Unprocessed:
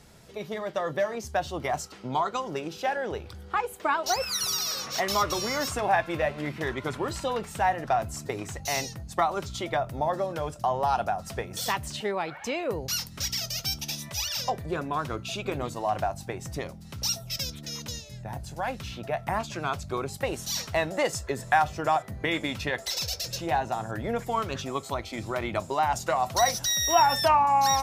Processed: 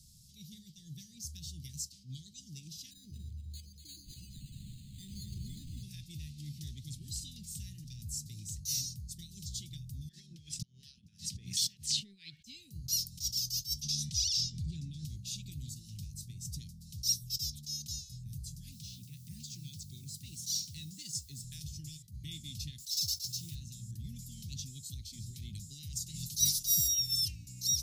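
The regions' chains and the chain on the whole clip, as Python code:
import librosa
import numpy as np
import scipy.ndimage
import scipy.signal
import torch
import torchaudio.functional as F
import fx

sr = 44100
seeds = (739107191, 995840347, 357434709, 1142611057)

y = fx.chain(x, sr, fx.high_shelf(hz=3700.0, db=-12.0),
    fx.echo_alternate(ms=120, hz=900.0, feedback_pct=57, wet_db=-2),
    fx.resample_linear(factor=8), at=(2.91, 5.83))
y = fx.chain(y, sr, fx.wah_lfo(hz=2.9, low_hz=710.0, high_hz=1800.0, q=3.2),
    fx.env_flatten(amount_pct=100), at=(10.09, 12.42))
y = fx.chain(y, sr, fx.lowpass(hz=5900.0, slope=12),
    fx.env_flatten(amount_pct=50), at=(13.82, 15.05))
y = fx.chain(y, sr, fx.highpass(hz=120.0, slope=12),
    fx.high_shelf(hz=11000.0, db=-10.0),
    fx.quant_dither(seeds[0], bits=10, dither='triangular'), at=(18.72, 21.44))
y = fx.chain(y, sr, fx.highpass(hz=80.0, slope=24),
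    fx.quant_dither(seeds[1], bits=8, dither='none'), at=(22.8, 23.55))
y = fx.spec_clip(y, sr, under_db=16, at=(26.13, 26.87), fade=0.02)
y = fx.comb(y, sr, ms=6.5, depth=0.53, at=(26.13, 26.87), fade=0.02)
y = scipy.signal.sosfilt(scipy.signal.cheby2(4, 80, [580.0, 1300.0], 'bandstop', fs=sr, output='sos'), y)
y = fx.low_shelf(y, sr, hz=470.0, db=-4.5)
y = fx.attack_slew(y, sr, db_per_s=230.0)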